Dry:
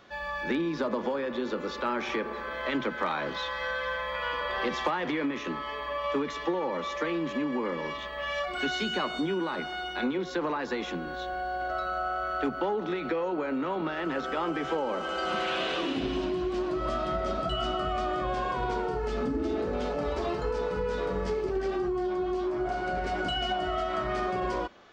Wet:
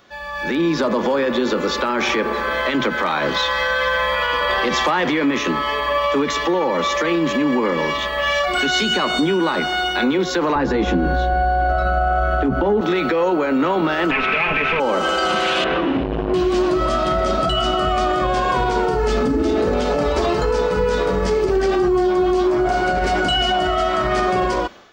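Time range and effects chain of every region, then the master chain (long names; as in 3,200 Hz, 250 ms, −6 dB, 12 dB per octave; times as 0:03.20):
0:10.55–0:12.81: spectral tilt −3.5 dB per octave + double-tracking delay 15 ms −6.5 dB
0:14.11–0:14.80: lower of the sound and its delayed copy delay 4.6 ms + low-pass with resonance 2,500 Hz, resonance Q 9.9
0:15.64–0:16.34: Chebyshev low-pass filter 1,700 Hz + low-shelf EQ 200 Hz +9.5 dB + saturating transformer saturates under 500 Hz
whole clip: brickwall limiter −24.5 dBFS; high-shelf EQ 6,400 Hz +10 dB; automatic gain control gain up to 11.5 dB; level +2.5 dB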